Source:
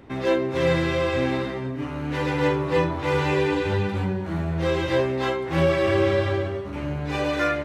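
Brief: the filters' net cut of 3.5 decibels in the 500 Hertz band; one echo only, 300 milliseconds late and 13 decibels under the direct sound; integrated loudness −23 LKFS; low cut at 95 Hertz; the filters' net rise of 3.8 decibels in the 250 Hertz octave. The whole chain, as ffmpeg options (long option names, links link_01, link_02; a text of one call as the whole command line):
ffmpeg -i in.wav -af "highpass=95,equalizer=frequency=250:width_type=o:gain=8.5,equalizer=frequency=500:width_type=o:gain=-7,aecho=1:1:300:0.224,volume=0.5dB" out.wav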